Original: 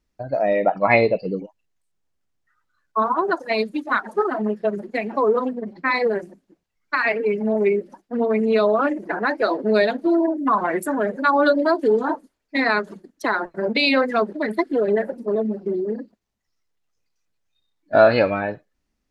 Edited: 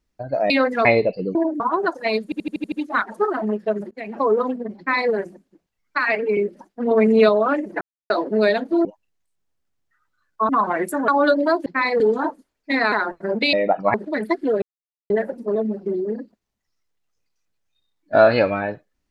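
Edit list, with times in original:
0:00.50–0:00.91: swap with 0:13.87–0:14.22
0:01.41–0:03.05: swap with 0:10.18–0:10.43
0:03.69: stutter 0.08 s, 7 plays
0:04.88–0:05.18: fade in, from −22.5 dB
0:05.75–0:06.09: duplicate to 0:11.85
0:07.34–0:07.70: remove
0:08.24–0:08.62: clip gain +4.5 dB
0:09.14–0:09.43: silence
0:11.02–0:11.27: remove
0:12.77–0:13.26: remove
0:14.90: splice in silence 0.48 s

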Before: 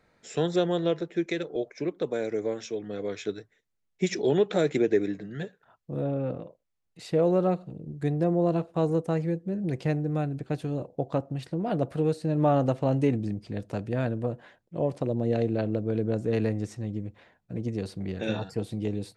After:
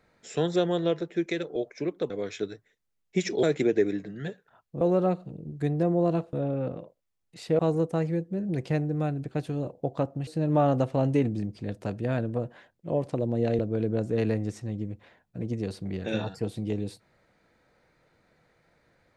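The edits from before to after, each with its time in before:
0:02.10–0:02.96: remove
0:04.29–0:04.58: remove
0:05.96–0:07.22: move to 0:08.74
0:11.42–0:12.15: remove
0:15.47–0:15.74: remove

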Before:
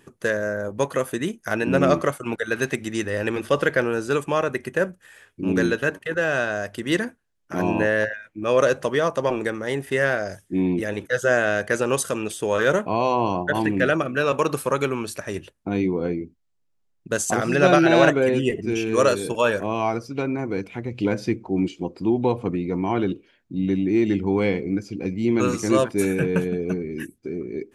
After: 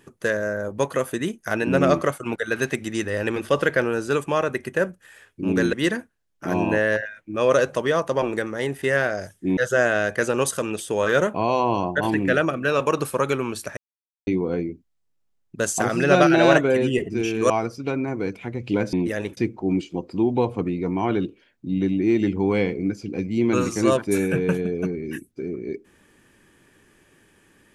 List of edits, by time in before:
0:05.73–0:06.81: remove
0:10.65–0:11.09: move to 0:21.24
0:15.29–0:15.79: silence
0:19.02–0:19.81: remove

